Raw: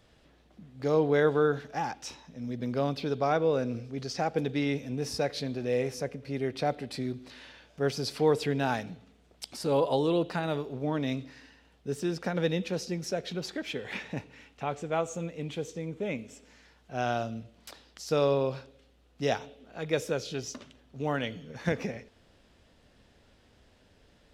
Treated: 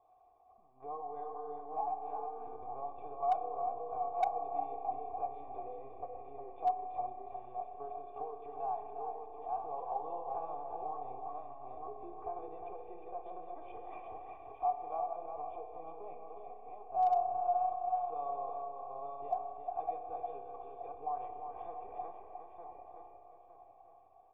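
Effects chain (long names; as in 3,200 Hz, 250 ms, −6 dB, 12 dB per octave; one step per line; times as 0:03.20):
feedback delay that plays each chunk backwards 456 ms, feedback 53%, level −10 dB
downward compressor 6 to 1, threshold −34 dBFS, peak gain reduction 14 dB
high-pass filter 140 Hz 12 dB per octave
linear-prediction vocoder at 8 kHz pitch kept
formant resonators in series a
parametric band 1,600 Hz −11 dB 0.71 octaves
comb filter 2.6 ms, depth 63%
single-tap delay 358 ms −6 dB
spring reverb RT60 2.9 s, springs 31 ms, chirp 75 ms, DRR 6 dB
hard clipping −33 dBFS, distortion −33 dB
low-shelf EQ 460 Hz −8 dB
notch filter 2,100 Hz, Q 24
level +13 dB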